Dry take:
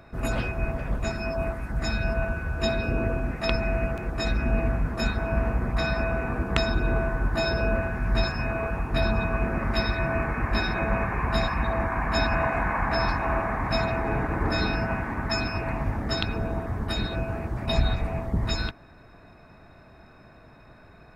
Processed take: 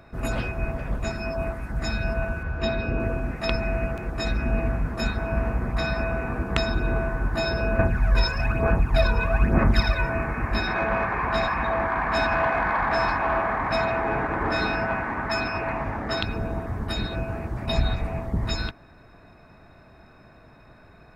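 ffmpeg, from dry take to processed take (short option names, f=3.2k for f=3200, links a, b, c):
-filter_complex "[0:a]asettb=1/sr,asplit=3[a][b][c];[a]atrim=end=2.434[d];[b]atrim=start=2.43:end=3,asetpts=PTS-STARTPTS,afade=t=in:d=0.004:c=qsin,afade=t=out:st=0.566:d=0.004:c=qsin,lowpass=4.6k[e];[c]atrim=start=2.996[f];[d][e]acrossfade=d=0.004:c1=hsin:c2=qsin[g];[g][f]acrossfade=d=0.004:c1=qsin:c2=hsin,asettb=1/sr,asplit=3[h][i][j];[h]atrim=end=7.794[k];[i]atrim=start=7.79:end=10.1,asetpts=PTS-STARTPTS,afade=t=in:d=0.004:c=qsin,afade=t=out:st=2.306:d=0.004:c=qsin,aphaser=in_gain=1:out_gain=1:delay=2.1:decay=0.65:speed=1.1:type=sinusoidal[l];[j]atrim=start=10.096[m];[k][l]acrossfade=d=0.004:c1=hsin:c2=qsin[n];[n][m]acrossfade=d=0.004:c1=qsin:c2=hsin,asettb=1/sr,asplit=3[o][p][q];[o]atrim=end=10.674[r];[p]atrim=start=10.67:end=16.22,asetpts=PTS-STARTPTS,afade=t=in:d=0.004:c=qsin,afade=t=out:st=5.546:d=0.004:c=qsin,asplit=2[s][t];[t]highpass=f=720:p=1,volume=12dB,asoftclip=type=tanh:threshold=-11dB[u];[s][u]amix=inputs=2:normalize=0,lowpass=f=1.9k:p=1,volume=-6dB[v];[q]atrim=start=16.216[w];[r][v]acrossfade=d=0.004:c1=hsin:c2=qsin[x];[x][w]acrossfade=d=0.004:c1=qsin:c2=hsin"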